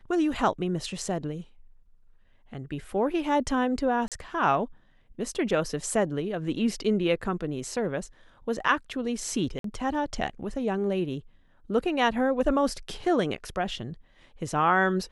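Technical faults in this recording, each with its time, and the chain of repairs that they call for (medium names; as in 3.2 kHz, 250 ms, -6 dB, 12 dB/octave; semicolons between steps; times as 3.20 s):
4.08–4.12 s: dropout 37 ms
9.59–9.64 s: dropout 53 ms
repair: interpolate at 4.08 s, 37 ms; interpolate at 9.59 s, 53 ms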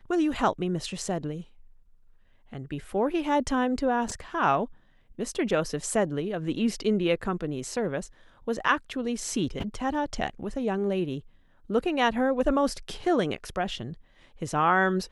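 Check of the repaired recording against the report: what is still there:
nothing left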